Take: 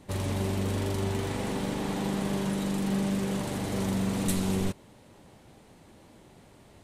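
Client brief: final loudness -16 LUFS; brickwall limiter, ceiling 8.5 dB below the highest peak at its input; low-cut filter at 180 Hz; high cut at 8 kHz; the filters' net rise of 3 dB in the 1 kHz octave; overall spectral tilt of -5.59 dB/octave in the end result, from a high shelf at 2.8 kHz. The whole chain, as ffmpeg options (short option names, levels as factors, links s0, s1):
-af "highpass=180,lowpass=8000,equalizer=f=1000:t=o:g=4.5,highshelf=f=2800:g=-6,volume=10,alimiter=limit=0.422:level=0:latency=1"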